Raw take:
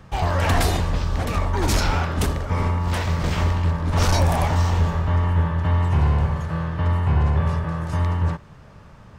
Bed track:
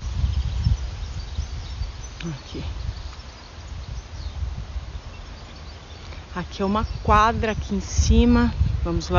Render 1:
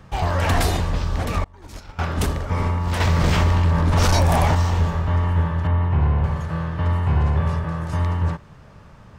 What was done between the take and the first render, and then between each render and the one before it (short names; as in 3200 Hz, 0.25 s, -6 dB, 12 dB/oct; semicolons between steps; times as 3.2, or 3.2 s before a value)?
1.44–1.99 expander -7 dBFS; 3–4.55 fast leveller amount 70%; 5.67–6.24 air absorption 300 m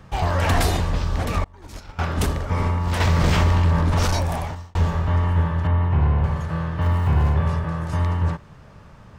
3.74–4.75 fade out; 6.81–7.34 zero-crossing step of -35.5 dBFS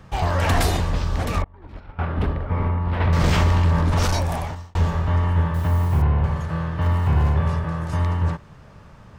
1.42–3.13 air absorption 450 m; 5.54–6.02 level-crossing sampler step -38 dBFS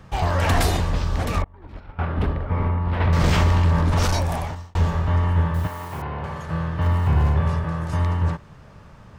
5.66–6.47 HPF 820 Hz -> 250 Hz 6 dB/oct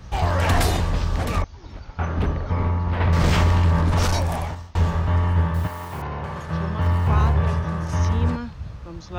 add bed track -12.5 dB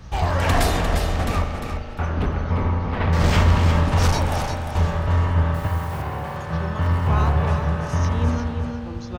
feedback echo 0.351 s, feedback 23%, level -7 dB; spring tank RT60 3.2 s, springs 38 ms, chirp 70 ms, DRR 5.5 dB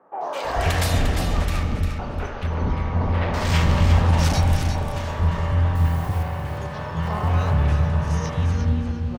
three bands offset in time mids, highs, lows 0.21/0.44 s, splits 360/1200 Hz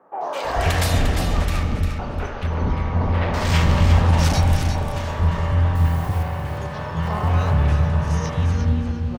gain +1.5 dB